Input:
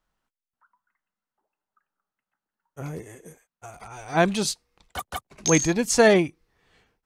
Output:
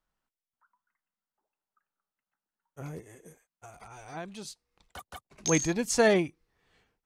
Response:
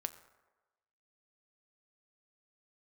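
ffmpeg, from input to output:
-filter_complex "[0:a]asplit=3[s0][s1][s2];[s0]afade=t=out:st=2.99:d=0.02[s3];[s1]acompressor=threshold=0.0126:ratio=2.5,afade=t=in:st=2.99:d=0.02,afade=t=out:st=5.32:d=0.02[s4];[s2]afade=t=in:st=5.32:d=0.02[s5];[s3][s4][s5]amix=inputs=3:normalize=0,volume=0.501"

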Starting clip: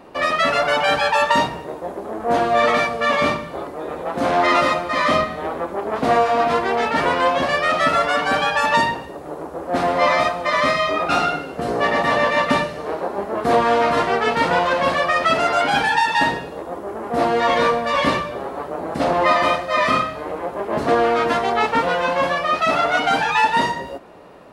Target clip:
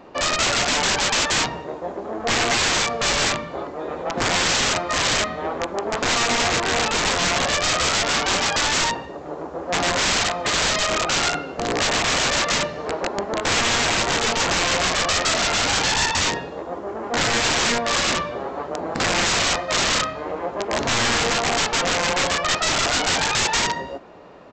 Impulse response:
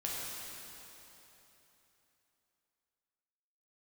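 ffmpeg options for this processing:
-af "aresample=16000,aeval=exprs='(mod(5.31*val(0)+1,2)-1)/5.31':c=same,aresample=44100,aeval=exprs='0.355*(cos(1*acos(clip(val(0)/0.355,-1,1)))-cos(1*PI/2))+0.0112*(cos(3*acos(clip(val(0)/0.355,-1,1)))-cos(3*PI/2))':c=same"

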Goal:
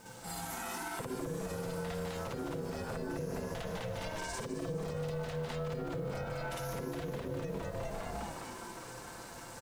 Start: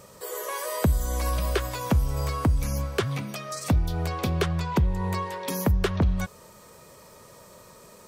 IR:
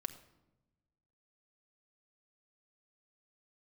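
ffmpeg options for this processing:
-filter_complex "[0:a]lowpass=11000,bandreject=f=50:t=h:w=6,bandreject=f=100:t=h:w=6,bandreject=f=150:t=h:w=6,atempo=0.84,asplit=9[s0][s1][s2][s3][s4][s5][s6][s7][s8];[s1]adelay=203,afreqshift=85,volume=0.668[s9];[s2]adelay=406,afreqshift=170,volume=0.394[s10];[s3]adelay=609,afreqshift=255,volume=0.232[s11];[s4]adelay=812,afreqshift=340,volume=0.138[s12];[s5]adelay=1015,afreqshift=425,volume=0.0813[s13];[s6]adelay=1218,afreqshift=510,volume=0.0479[s14];[s7]adelay=1421,afreqshift=595,volume=0.0282[s15];[s8]adelay=1624,afreqshift=680,volume=0.0166[s16];[s0][s9][s10][s11][s12][s13][s14][s15][s16]amix=inputs=9:normalize=0,asplit=2[s17][s18];[1:a]atrim=start_sample=2205,adelay=55[s19];[s18][s19]afir=irnorm=-1:irlink=0,volume=2.24[s20];[s17][s20]amix=inputs=2:normalize=0,acompressor=threshold=0.0501:ratio=6,equalizer=f=460:t=o:w=0.44:g=-5.5,aecho=1:1:5.8:0.61,alimiter=limit=0.0631:level=0:latency=1:release=86,aeval=exprs='val(0)*sin(2*PI*320*n/s)':c=same,acrusher=bits=9:mix=0:aa=0.000001,volume=0.668"

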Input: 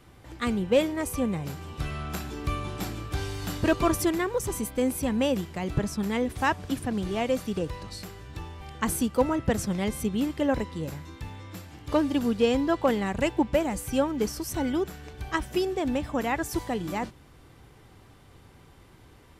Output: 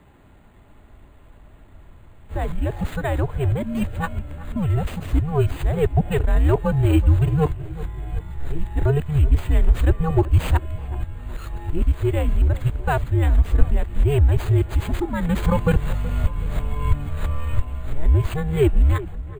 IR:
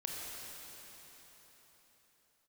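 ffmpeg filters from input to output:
-filter_complex "[0:a]areverse,equalizer=f=480:w=0.64:g=5.5,afreqshift=-150,asubboost=boost=5.5:cutoff=91,acrossover=split=2200[s0][s1];[s1]acrusher=samples=8:mix=1:aa=0.000001[s2];[s0][s2]amix=inputs=2:normalize=0,asplit=2[s3][s4];[s4]adelay=375,lowpass=f=1400:p=1,volume=0.158,asplit=2[s5][s6];[s6]adelay=375,lowpass=f=1400:p=1,volume=0.52,asplit=2[s7][s8];[s8]adelay=375,lowpass=f=1400:p=1,volume=0.52,asplit=2[s9][s10];[s10]adelay=375,lowpass=f=1400:p=1,volume=0.52,asplit=2[s11][s12];[s12]adelay=375,lowpass=f=1400:p=1,volume=0.52[s13];[s3][s5][s7][s9][s11][s13]amix=inputs=6:normalize=0"

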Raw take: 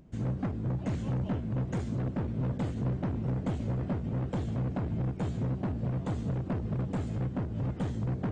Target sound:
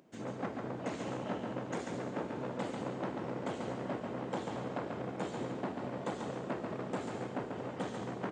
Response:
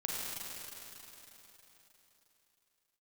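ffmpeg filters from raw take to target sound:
-filter_complex "[0:a]highpass=390,aecho=1:1:140:0.562,asplit=2[s0][s1];[1:a]atrim=start_sample=2205[s2];[s1][s2]afir=irnorm=-1:irlink=0,volume=0.316[s3];[s0][s3]amix=inputs=2:normalize=0"

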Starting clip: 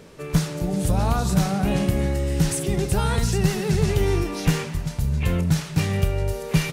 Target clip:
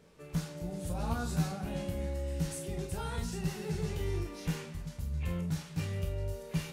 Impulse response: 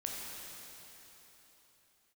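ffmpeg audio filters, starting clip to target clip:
-filter_complex "[0:a]asettb=1/sr,asplit=3[s0][s1][s2];[s0]atrim=end=0.944[s3];[s1]atrim=start=0.94:end=1.52,asetpts=PTS-STARTPTS,afade=t=in:d=0.004:c=qsin,afade=t=out:st=0.576:d=0.004:c=qsin,asplit=2[s4][s5];[s5]adelay=13,volume=0.794[s6];[s4][s6]amix=inputs=2:normalize=0,atrim=end_sample=25578[s7];[s2]atrim=start=1.516[s8];[s3][s7]acrossfade=d=0.004:c1=hsin:c2=qsin[s9];[s9][s8]acrossfade=d=0.004:c1=qsin:c2=hsin[s10];[1:a]atrim=start_sample=2205,atrim=end_sample=4410,asetrate=83790,aresample=44100[s11];[s10][s11]afir=irnorm=-1:irlink=0,volume=0.422"

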